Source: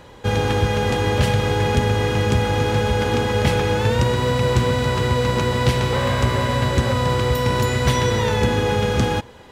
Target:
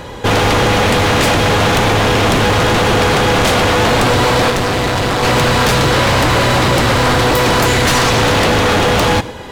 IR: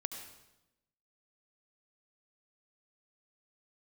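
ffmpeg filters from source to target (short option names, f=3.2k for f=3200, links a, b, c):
-filter_complex "[0:a]aeval=exprs='0.422*sin(PI/2*3.98*val(0)/0.422)':c=same,asettb=1/sr,asplit=3[a][b][c];[a]atrim=end=4.504[d];[b]atrim=start=4.5:end=5.23,asetpts=PTS-STARTPTS,afade=t=in:d=0.004:c=qsin,afade=t=out:st=0.726:d=0.004:c=qsin,tremolo=f=200:d=0.75[e];[c]atrim=start=5.226[f];[d][e]acrossfade=d=0.004:c1=hsin:c2=qsin[g];[g][f]acrossfade=d=0.004:c1=qsin:c2=hsin,asplit=2[h][i];[1:a]atrim=start_sample=2205,atrim=end_sample=6174[j];[i][j]afir=irnorm=-1:irlink=0,volume=-7.5dB[k];[h][k]amix=inputs=2:normalize=0,volume=-4dB"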